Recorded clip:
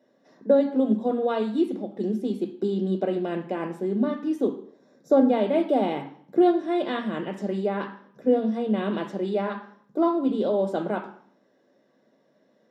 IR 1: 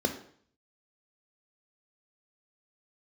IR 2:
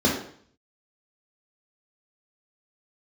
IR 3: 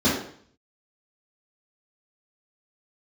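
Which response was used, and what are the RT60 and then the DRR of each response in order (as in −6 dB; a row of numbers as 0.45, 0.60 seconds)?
1; 0.55, 0.55, 0.55 seconds; 7.5, −2.0, −8.5 decibels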